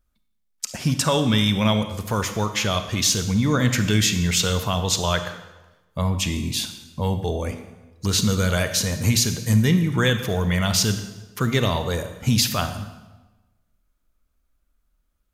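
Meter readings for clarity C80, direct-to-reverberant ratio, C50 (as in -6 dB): 11.5 dB, 8.5 dB, 9.5 dB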